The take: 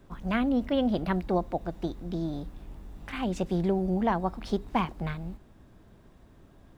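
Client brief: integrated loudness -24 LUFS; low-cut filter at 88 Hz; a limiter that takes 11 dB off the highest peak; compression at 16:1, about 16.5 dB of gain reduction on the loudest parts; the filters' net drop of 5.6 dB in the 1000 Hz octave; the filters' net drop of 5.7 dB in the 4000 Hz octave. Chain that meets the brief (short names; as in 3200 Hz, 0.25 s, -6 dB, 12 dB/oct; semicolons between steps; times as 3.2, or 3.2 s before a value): HPF 88 Hz; bell 1000 Hz -7.5 dB; bell 4000 Hz -7.5 dB; compressor 16:1, threshold -40 dBFS; gain +26 dB; limiter -14.5 dBFS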